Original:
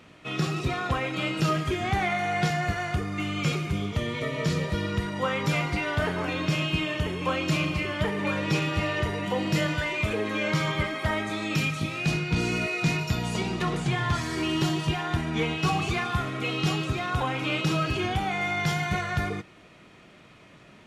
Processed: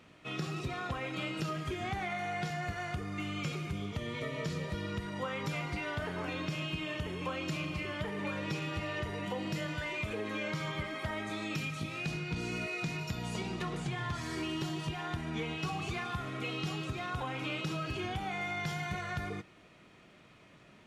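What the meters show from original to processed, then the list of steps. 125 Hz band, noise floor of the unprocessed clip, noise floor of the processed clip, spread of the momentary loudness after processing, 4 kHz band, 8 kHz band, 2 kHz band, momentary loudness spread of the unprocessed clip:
−10.0 dB, −52 dBFS, −59 dBFS, 2 LU, −9.5 dB, −9.5 dB, −9.0 dB, 3 LU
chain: downward compressor, threshold −26 dBFS, peak gain reduction 7 dB
level −6.5 dB

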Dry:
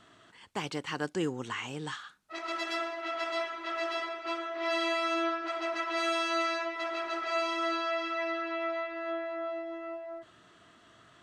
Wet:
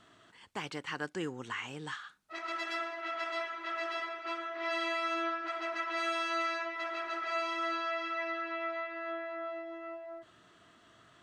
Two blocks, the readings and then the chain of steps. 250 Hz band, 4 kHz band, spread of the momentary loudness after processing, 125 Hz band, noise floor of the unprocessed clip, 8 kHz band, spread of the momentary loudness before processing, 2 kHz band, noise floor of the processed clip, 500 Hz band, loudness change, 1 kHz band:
−6.0 dB, −4.5 dB, 10 LU, can't be measured, −60 dBFS, −5.5 dB, 10 LU, −1.0 dB, −62 dBFS, −5.0 dB, −3.0 dB, −2.0 dB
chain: dynamic equaliser 1,700 Hz, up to +6 dB, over −47 dBFS, Q 0.98
in parallel at −2 dB: downward compressor, threshold −42 dBFS, peak gain reduction 17.5 dB
on the sum: level −7.5 dB

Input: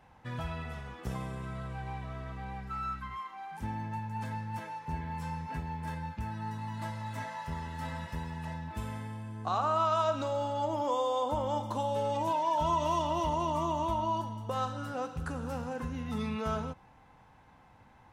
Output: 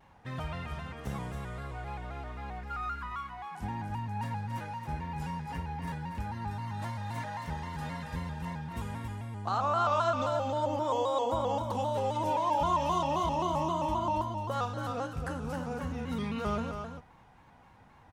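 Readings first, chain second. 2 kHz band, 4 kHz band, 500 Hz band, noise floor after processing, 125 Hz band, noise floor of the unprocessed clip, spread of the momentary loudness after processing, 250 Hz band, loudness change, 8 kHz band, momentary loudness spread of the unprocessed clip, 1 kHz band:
+1.5 dB, +0.5 dB, +0.5 dB, −58 dBFS, +1.0 dB, −59 dBFS, 12 LU, +1.0 dB, +1.0 dB, +0.5 dB, 11 LU, +1.0 dB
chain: single-tap delay 275 ms −6.5 dB
pitch modulation by a square or saw wave square 3.8 Hz, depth 100 cents

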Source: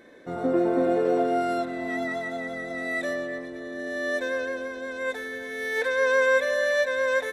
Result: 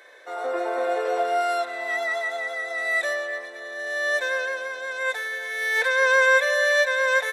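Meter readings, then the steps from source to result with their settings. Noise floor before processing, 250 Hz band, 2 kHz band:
−37 dBFS, −14.5 dB, +6.5 dB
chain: Bessel high-pass filter 800 Hz, order 6
level +7 dB

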